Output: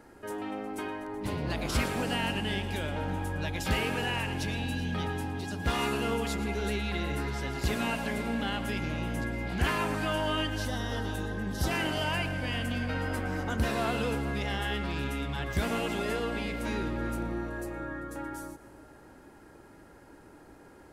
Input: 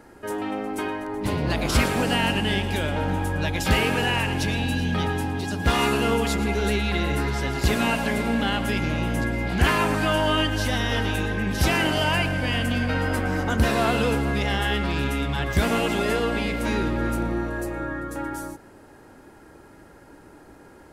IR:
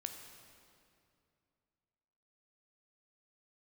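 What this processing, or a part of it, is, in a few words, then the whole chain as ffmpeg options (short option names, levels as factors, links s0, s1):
ducked reverb: -filter_complex "[0:a]asettb=1/sr,asplit=3[s0][s1][s2];[s0]atrim=end=10.654[s3];[s1]atrim=start=10.65:end=11.71,asetpts=PTS-STARTPTS,afade=t=in:d=0.004:c=qsin,afade=t=out:st=1.056:d=0.004:c=qsin,equalizer=f=2400:t=o:w=0.49:g=-14[s4];[s2]atrim=start=11.706[s5];[s3][s4]acrossfade=d=0.004:c1=hsin:c2=qsin[s6];[s6][s5]acrossfade=d=0.004:c1=qsin:c2=hsin,asplit=3[s7][s8][s9];[1:a]atrim=start_sample=2205[s10];[s8][s10]afir=irnorm=-1:irlink=0[s11];[s9]apad=whole_len=922753[s12];[s11][s12]sidechaincompress=threshold=0.00891:ratio=8:attack=16:release=126,volume=0.708[s13];[s7][s13]amix=inputs=2:normalize=0,volume=0.376"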